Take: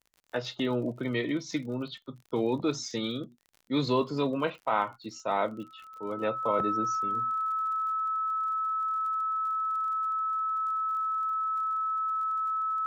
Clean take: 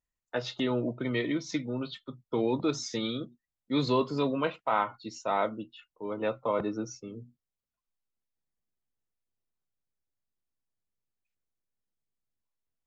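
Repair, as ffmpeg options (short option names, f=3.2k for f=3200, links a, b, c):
-af "adeclick=t=4,bandreject=f=1.3k:w=30"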